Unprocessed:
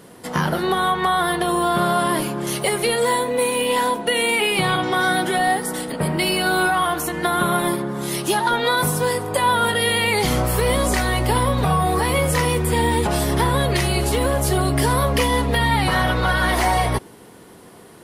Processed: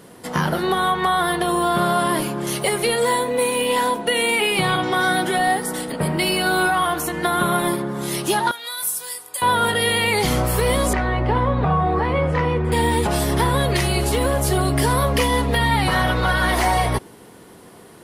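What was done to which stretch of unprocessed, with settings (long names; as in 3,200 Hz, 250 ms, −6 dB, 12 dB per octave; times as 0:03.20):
0:08.51–0:09.42: first difference
0:10.93–0:12.72: low-pass filter 2,000 Hz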